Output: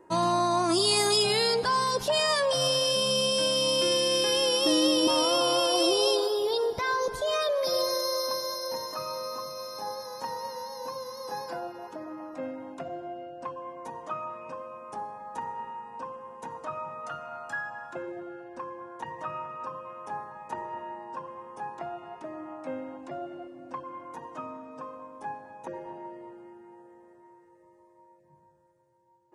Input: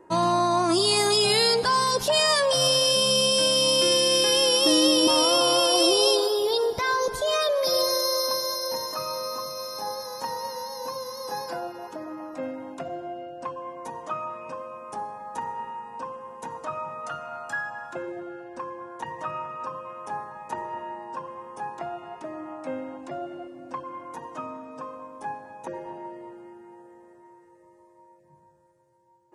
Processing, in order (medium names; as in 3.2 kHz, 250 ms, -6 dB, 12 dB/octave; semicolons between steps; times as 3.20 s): treble shelf 4.6 kHz +2.5 dB, from 1.23 s -5 dB; trim -3 dB